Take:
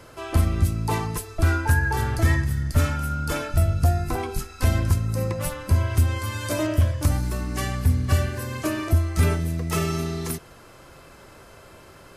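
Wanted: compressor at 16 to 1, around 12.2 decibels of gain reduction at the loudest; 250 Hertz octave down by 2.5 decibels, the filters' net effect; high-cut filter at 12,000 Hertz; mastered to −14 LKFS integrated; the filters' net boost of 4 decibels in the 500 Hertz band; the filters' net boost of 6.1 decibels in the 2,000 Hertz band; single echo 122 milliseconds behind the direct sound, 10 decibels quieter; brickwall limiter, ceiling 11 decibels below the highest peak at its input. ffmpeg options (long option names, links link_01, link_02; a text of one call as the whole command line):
ffmpeg -i in.wav -af "lowpass=12000,equalizer=frequency=250:width_type=o:gain=-6.5,equalizer=frequency=500:width_type=o:gain=6.5,equalizer=frequency=2000:width_type=o:gain=7.5,acompressor=threshold=-26dB:ratio=16,alimiter=level_in=3dB:limit=-24dB:level=0:latency=1,volume=-3dB,aecho=1:1:122:0.316,volume=21.5dB" out.wav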